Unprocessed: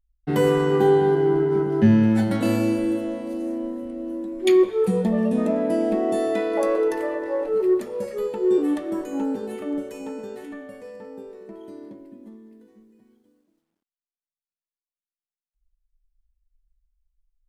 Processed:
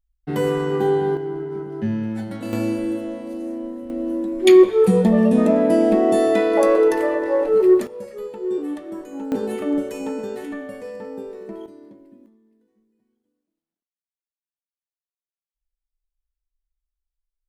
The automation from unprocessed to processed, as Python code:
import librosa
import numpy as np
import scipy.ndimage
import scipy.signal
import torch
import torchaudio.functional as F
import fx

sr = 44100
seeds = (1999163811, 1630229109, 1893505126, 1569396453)

y = fx.gain(x, sr, db=fx.steps((0.0, -2.0), (1.17, -8.0), (2.53, -1.0), (3.9, 6.0), (7.87, -5.0), (9.32, 6.0), (11.66, -4.0), (12.26, -13.0)))